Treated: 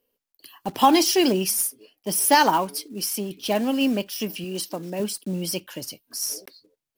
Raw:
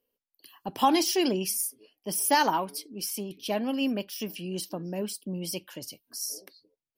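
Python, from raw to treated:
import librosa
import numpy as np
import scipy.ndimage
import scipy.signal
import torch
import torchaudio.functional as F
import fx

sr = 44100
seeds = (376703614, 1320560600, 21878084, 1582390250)

y = fx.block_float(x, sr, bits=5)
y = fx.low_shelf(y, sr, hz=180.0, db=-11.0, at=(4.44, 5.0))
y = F.gain(torch.from_numpy(y), 6.0).numpy()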